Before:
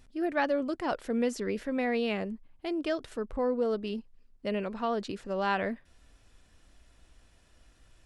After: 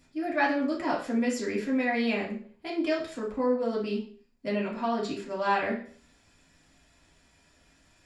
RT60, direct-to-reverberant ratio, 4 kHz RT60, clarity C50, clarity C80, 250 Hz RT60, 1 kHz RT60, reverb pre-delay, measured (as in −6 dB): 0.50 s, −5.5 dB, 0.40 s, 6.5 dB, 11.0 dB, 0.50 s, 0.45 s, 3 ms